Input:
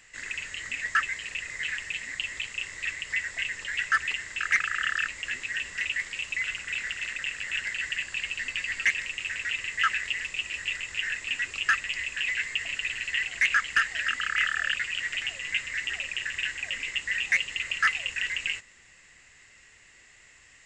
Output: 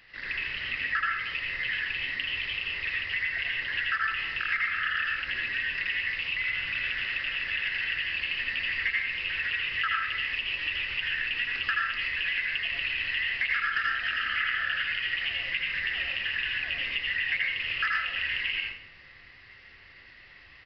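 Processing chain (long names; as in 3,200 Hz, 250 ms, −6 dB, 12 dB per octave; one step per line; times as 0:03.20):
convolution reverb RT60 0.65 s, pre-delay 74 ms, DRR −2.5 dB
downsampling to 11,025 Hz
downward compressor 3 to 1, threshold −27 dBFS, peak gain reduction 8.5 dB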